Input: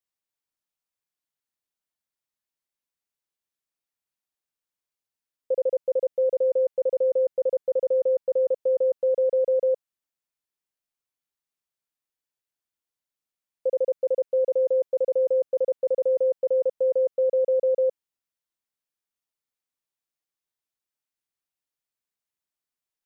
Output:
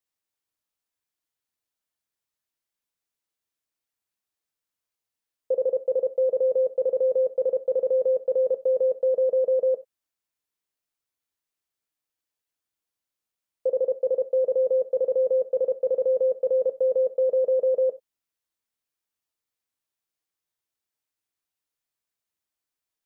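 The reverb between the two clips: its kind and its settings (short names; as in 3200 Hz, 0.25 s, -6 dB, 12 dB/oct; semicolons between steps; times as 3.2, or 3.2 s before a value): non-linear reverb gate 0.11 s falling, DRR 10 dB; gain +1.5 dB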